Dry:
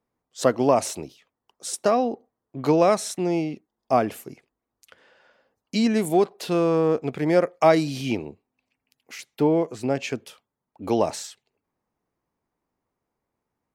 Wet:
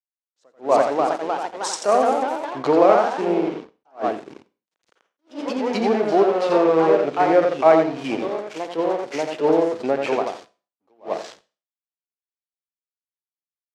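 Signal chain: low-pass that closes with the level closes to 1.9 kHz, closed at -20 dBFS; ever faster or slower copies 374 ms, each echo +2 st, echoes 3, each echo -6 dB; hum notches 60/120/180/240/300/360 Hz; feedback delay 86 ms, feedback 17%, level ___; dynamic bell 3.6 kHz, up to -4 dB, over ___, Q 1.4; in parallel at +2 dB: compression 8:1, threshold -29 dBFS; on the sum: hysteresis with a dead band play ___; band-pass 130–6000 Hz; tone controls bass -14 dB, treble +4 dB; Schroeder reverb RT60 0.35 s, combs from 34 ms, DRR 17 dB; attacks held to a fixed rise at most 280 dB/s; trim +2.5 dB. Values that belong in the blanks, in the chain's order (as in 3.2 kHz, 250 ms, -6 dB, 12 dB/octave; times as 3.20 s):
-5.5 dB, -44 dBFS, -28.5 dBFS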